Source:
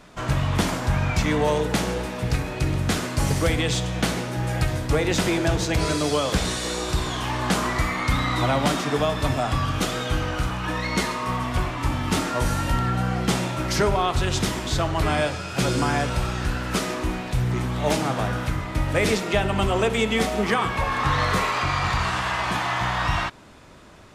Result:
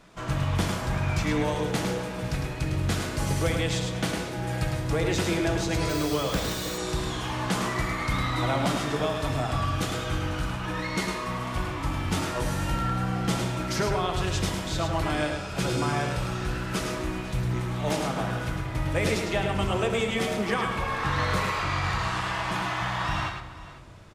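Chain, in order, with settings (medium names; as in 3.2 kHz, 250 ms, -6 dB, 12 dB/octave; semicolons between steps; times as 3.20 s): multi-tap echo 106/496 ms -5.5/-17.5 dB; reverberation RT60 1.8 s, pre-delay 6 ms, DRR 9 dB; 5.89–6.78 s: careless resampling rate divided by 2×, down none, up hold; trim -6 dB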